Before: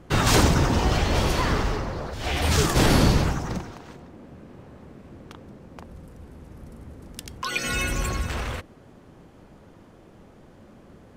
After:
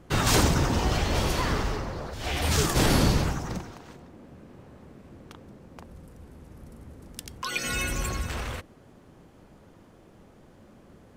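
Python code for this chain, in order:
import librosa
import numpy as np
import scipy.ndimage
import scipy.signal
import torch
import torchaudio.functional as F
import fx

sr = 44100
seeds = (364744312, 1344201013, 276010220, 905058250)

y = fx.high_shelf(x, sr, hz=6200.0, db=4.5)
y = y * librosa.db_to_amplitude(-3.5)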